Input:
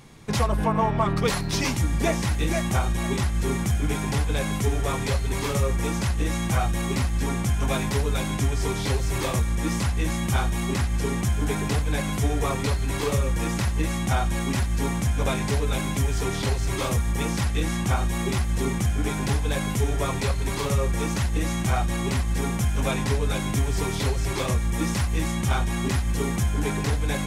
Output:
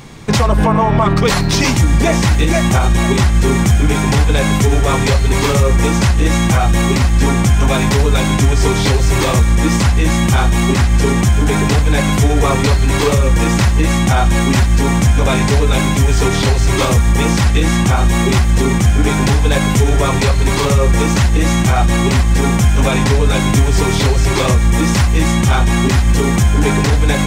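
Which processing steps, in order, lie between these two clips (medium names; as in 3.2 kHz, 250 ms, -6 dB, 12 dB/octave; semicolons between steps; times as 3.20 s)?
peaking EQ 11 kHz -12.5 dB 0.24 oct; loudness maximiser +16 dB; trim -2.5 dB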